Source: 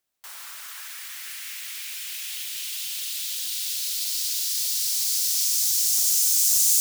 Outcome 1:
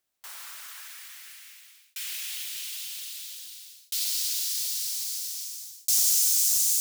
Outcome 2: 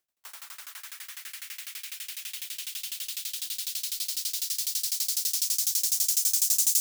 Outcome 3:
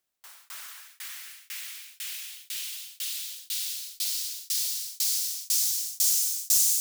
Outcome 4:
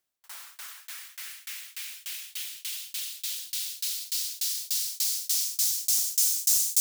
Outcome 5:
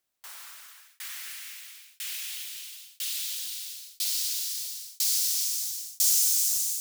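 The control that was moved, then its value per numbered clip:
tremolo, rate: 0.51 Hz, 12 Hz, 2 Hz, 3.4 Hz, 1 Hz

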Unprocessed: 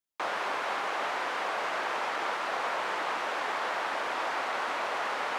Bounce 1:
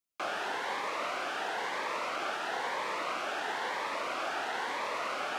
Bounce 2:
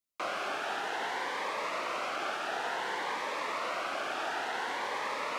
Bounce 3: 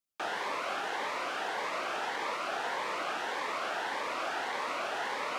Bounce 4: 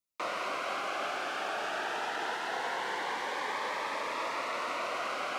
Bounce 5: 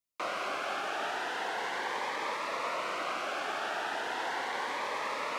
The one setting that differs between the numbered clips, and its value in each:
Shepard-style phaser, rate: 1 Hz, 0.56 Hz, 1.7 Hz, 0.22 Hz, 0.37 Hz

